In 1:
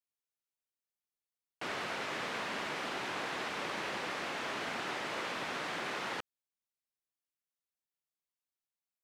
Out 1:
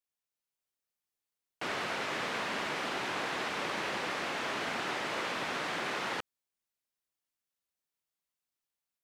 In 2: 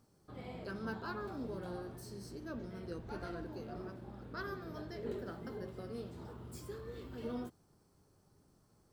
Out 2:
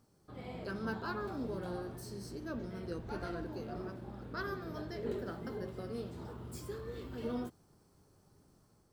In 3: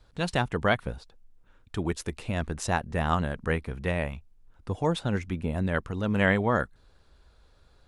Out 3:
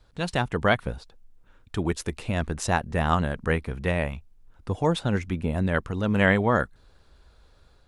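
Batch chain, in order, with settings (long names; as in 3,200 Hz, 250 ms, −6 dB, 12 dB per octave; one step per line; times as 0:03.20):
automatic gain control gain up to 3 dB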